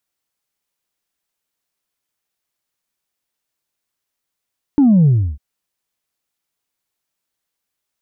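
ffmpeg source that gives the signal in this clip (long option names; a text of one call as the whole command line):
ffmpeg -f lavfi -i "aevalsrc='0.398*clip((0.6-t)/0.32,0,1)*tanh(1.06*sin(2*PI*300*0.6/log(65/300)*(exp(log(65/300)*t/0.6)-1)))/tanh(1.06)':duration=0.6:sample_rate=44100" out.wav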